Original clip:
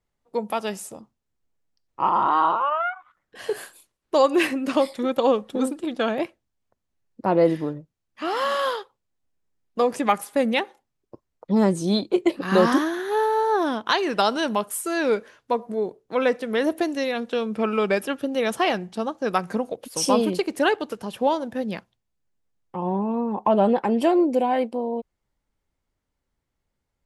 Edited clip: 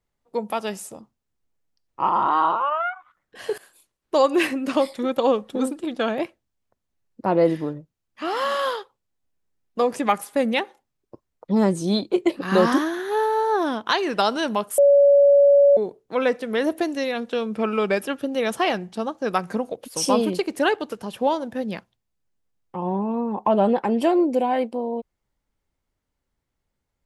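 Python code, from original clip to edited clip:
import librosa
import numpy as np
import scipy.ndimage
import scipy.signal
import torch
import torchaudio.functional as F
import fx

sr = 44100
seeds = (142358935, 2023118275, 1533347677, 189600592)

y = fx.edit(x, sr, fx.fade_in_from(start_s=3.58, length_s=0.57, curve='qsin', floor_db=-18.5),
    fx.bleep(start_s=14.78, length_s=0.99, hz=566.0, db=-10.5), tone=tone)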